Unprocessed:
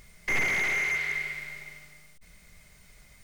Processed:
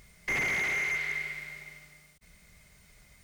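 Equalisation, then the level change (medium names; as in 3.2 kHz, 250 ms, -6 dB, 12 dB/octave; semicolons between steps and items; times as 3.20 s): high-pass 85 Hz 6 dB/octave; bass shelf 110 Hz +7 dB; -2.5 dB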